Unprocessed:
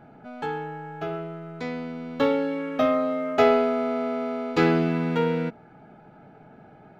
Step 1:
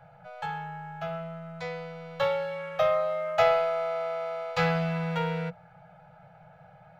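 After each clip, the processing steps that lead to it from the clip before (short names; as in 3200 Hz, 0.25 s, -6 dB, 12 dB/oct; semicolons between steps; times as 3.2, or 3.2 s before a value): Chebyshev band-stop 180–490 Hz, order 5; gain -1 dB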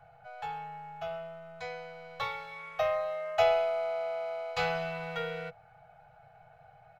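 comb 2.7 ms, depth 85%; gain -5 dB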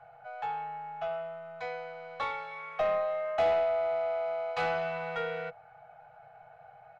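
overdrive pedal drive 17 dB, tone 1100 Hz, clips at -14 dBFS; gain -3.5 dB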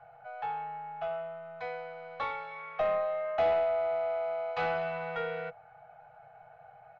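air absorption 130 m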